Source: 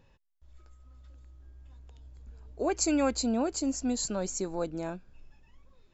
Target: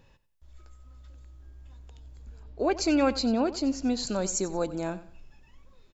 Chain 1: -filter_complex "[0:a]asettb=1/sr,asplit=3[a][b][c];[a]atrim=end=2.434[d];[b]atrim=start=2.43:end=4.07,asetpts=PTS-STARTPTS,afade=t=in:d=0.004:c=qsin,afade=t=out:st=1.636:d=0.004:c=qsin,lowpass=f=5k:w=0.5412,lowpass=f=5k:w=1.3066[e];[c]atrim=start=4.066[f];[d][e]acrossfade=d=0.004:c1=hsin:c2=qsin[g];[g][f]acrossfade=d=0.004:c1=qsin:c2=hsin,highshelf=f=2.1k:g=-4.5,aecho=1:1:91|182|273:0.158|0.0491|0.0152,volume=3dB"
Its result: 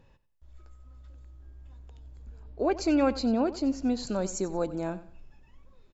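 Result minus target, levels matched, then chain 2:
4000 Hz band -5.5 dB
-filter_complex "[0:a]asettb=1/sr,asplit=3[a][b][c];[a]atrim=end=2.434[d];[b]atrim=start=2.43:end=4.07,asetpts=PTS-STARTPTS,afade=t=in:d=0.004:c=qsin,afade=t=out:st=1.636:d=0.004:c=qsin,lowpass=f=5k:w=0.5412,lowpass=f=5k:w=1.3066[e];[c]atrim=start=4.066[f];[d][e]acrossfade=d=0.004:c1=hsin:c2=qsin[g];[g][f]acrossfade=d=0.004:c1=qsin:c2=hsin,highshelf=f=2.1k:g=3,aecho=1:1:91|182|273:0.158|0.0491|0.0152,volume=3dB"

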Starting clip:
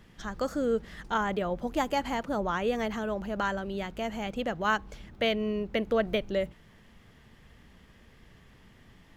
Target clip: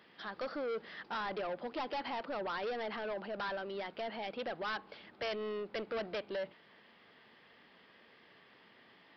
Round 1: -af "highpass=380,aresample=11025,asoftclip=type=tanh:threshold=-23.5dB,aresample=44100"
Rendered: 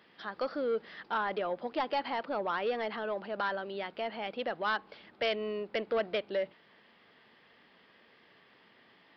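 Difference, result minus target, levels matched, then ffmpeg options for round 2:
soft clip: distortion -8 dB
-af "highpass=380,aresample=11025,asoftclip=type=tanh:threshold=-34.5dB,aresample=44100"

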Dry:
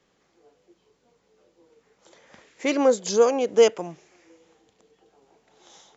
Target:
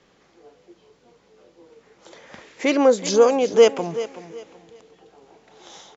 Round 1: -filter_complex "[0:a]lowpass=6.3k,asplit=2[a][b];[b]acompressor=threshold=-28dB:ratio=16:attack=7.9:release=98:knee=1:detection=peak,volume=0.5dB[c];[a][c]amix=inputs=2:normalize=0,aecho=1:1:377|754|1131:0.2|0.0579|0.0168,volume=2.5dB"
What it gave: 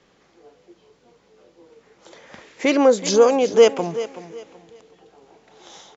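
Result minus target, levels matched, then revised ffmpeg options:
compressor: peak gain reduction -7 dB
-filter_complex "[0:a]lowpass=6.3k,asplit=2[a][b];[b]acompressor=threshold=-35.5dB:ratio=16:attack=7.9:release=98:knee=1:detection=peak,volume=0.5dB[c];[a][c]amix=inputs=2:normalize=0,aecho=1:1:377|754|1131:0.2|0.0579|0.0168,volume=2.5dB"

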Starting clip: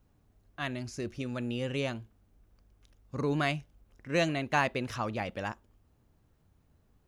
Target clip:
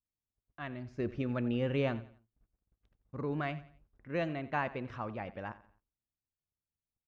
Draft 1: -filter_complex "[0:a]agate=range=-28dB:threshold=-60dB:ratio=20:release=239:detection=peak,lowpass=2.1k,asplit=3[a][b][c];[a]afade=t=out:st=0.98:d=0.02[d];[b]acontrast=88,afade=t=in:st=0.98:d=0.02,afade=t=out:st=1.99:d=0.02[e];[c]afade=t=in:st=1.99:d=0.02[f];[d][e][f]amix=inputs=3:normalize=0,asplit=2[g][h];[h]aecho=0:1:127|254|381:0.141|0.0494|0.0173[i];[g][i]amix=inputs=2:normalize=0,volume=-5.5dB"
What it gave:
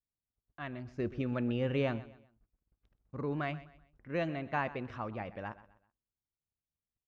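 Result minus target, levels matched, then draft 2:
echo 39 ms late
-filter_complex "[0:a]agate=range=-28dB:threshold=-60dB:ratio=20:release=239:detection=peak,lowpass=2.1k,asplit=3[a][b][c];[a]afade=t=out:st=0.98:d=0.02[d];[b]acontrast=88,afade=t=in:st=0.98:d=0.02,afade=t=out:st=1.99:d=0.02[e];[c]afade=t=in:st=1.99:d=0.02[f];[d][e][f]amix=inputs=3:normalize=0,asplit=2[g][h];[h]aecho=0:1:88|176|264:0.141|0.0494|0.0173[i];[g][i]amix=inputs=2:normalize=0,volume=-5.5dB"

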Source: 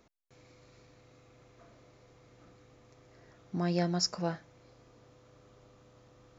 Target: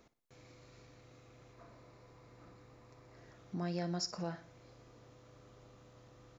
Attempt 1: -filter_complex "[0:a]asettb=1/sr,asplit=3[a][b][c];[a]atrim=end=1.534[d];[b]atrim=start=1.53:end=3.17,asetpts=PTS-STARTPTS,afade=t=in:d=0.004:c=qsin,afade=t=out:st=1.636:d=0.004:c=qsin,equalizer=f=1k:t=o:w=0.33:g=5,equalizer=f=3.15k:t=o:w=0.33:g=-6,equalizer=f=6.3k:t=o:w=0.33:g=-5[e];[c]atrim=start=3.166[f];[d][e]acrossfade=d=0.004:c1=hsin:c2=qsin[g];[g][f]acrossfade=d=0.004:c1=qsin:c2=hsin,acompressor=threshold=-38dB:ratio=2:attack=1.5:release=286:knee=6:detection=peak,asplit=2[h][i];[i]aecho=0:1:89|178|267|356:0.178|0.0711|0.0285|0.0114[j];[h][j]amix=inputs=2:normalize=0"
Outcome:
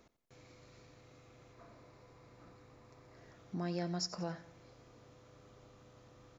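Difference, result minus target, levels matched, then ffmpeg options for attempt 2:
echo 30 ms late
-filter_complex "[0:a]asettb=1/sr,asplit=3[a][b][c];[a]atrim=end=1.534[d];[b]atrim=start=1.53:end=3.17,asetpts=PTS-STARTPTS,afade=t=in:d=0.004:c=qsin,afade=t=out:st=1.636:d=0.004:c=qsin,equalizer=f=1k:t=o:w=0.33:g=5,equalizer=f=3.15k:t=o:w=0.33:g=-6,equalizer=f=6.3k:t=o:w=0.33:g=-5[e];[c]atrim=start=3.166[f];[d][e]acrossfade=d=0.004:c1=hsin:c2=qsin[g];[g][f]acrossfade=d=0.004:c1=qsin:c2=hsin,acompressor=threshold=-38dB:ratio=2:attack=1.5:release=286:knee=6:detection=peak,asplit=2[h][i];[i]aecho=0:1:59|118|177|236:0.178|0.0711|0.0285|0.0114[j];[h][j]amix=inputs=2:normalize=0"

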